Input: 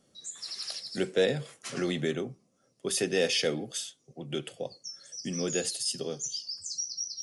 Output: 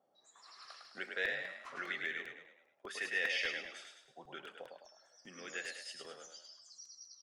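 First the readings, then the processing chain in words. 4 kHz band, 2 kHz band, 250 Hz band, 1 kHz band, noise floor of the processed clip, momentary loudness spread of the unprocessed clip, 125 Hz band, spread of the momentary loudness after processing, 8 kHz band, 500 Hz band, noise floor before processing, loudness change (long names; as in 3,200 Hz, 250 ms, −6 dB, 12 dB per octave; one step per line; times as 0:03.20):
−12.0 dB, +1.5 dB, −22.5 dB, −4.5 dB, −73 dBFS, 13 LU, below −25 dB, 20 LU, −19.5 dB, −18.0 dB, −70 dBFS, −8.0 dB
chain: envelope filter 760–1,900 Hz, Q 3.7, up, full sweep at −27 dBFS
echo with shifted repeats 104 ms, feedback 46%, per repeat +37 Hz, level −4.5 dB
regular buffer underruns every 0.20 s, samples 128, repeat
level +3 dB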